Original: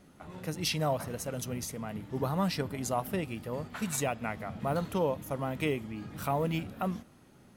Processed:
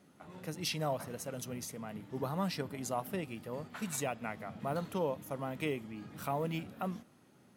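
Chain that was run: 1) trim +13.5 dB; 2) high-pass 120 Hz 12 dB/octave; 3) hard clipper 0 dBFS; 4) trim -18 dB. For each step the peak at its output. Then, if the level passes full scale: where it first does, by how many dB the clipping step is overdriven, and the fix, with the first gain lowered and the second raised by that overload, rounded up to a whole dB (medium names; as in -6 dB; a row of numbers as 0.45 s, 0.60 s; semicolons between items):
-3.0 dBFS, -2.5 dBFS, -2.5 dBFS, -20.5 dBFS; nothing clips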